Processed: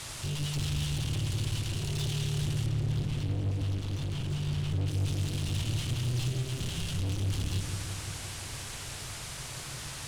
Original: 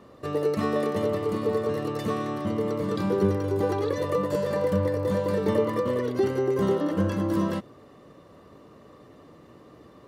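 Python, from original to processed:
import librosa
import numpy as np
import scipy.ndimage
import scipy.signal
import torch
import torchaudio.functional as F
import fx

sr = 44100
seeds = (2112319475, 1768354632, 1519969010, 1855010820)

y = fx.leveller(x, sr, passes=5)
y = scipy.signal.sosfilt(scipy.signal.cheby1(4, 1.0, [140.0, 2900.0], 'bandstop', fs=sr, output='sos'), y)
y = fx.low_shelf(y, sr, hz=180.0, db=4.0)
y = fx.quant_dither(y, sr, seeds[0], bits=6, dither='triangular')
y = scipy.signal.sosfilt(scipy.signal.butter(4, 10000.0, 'lowpass', fs=sr, output='sos'), y)
y = 10.0 ** (-28.5 / 20.0) * np.tanh(y / 10.0 ** (-28.5 / 20.0))
y = fx.high_shelf(y, sr, hz=3300.0, db=-11.5, at=(2.66, 4.88))
y = fx.echo_filtered(y, sr, ms=171, feedback_pct=73, hz=2000.0, wet_db=-6.5)
y = y * 10.0 ** (-2.0 / 20.0)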